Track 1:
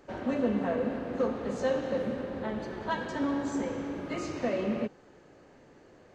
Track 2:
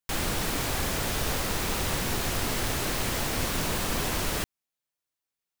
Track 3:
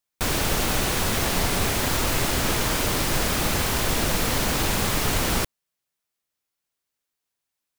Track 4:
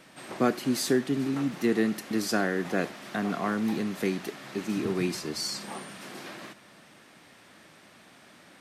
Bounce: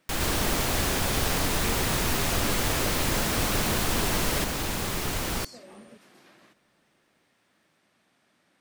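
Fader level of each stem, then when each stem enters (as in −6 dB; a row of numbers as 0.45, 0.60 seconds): −19.5, +0.5, −6.5, −14.5 decibels; 1.10, 0.00, 0.00, 0.00 seconds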